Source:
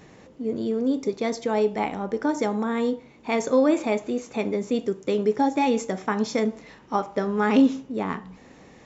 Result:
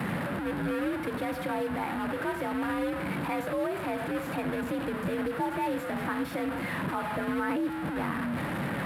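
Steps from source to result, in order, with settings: one-bit delta coder 64 kbps, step -21.5 dBFS; peaking EQ 6.1 kHz -14 dB 1.7 oct; peak limiter -16.5 dBFS, peak gain reduction 8 dB; frequency shift +53 Hz; fifteen-band graphic EQ 160 Hz +11 dB, 400 Hz -6 dB, 1.6 kHz +6 dB, 6.3 kHz -10 dB; trim -5 dB

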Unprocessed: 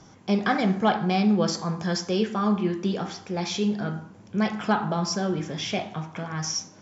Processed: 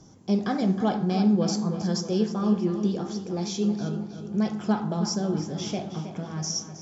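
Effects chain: FFT filter 330 Hz 0 dB, 2.2 kHz -13 dB, 6.1 kHz 0 dB; on a send: filtered feedback delay 317 ms, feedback 59%, low-pass 4.6 kHz, level -10 dB

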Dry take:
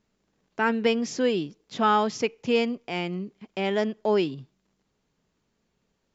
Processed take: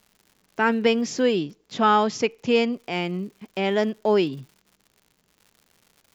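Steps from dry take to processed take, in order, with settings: crackle 180 per s -46 dBFS, from 1.36 s 21 per s, from 2.74 s 160 per s; trim +3 dB

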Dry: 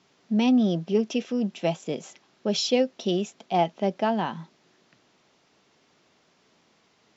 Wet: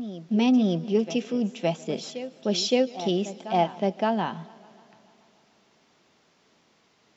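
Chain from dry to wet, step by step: reverse echo 567 ms -13 dB; modulated delay 145 ms, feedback 73%, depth 82 cents, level -23.5 dB

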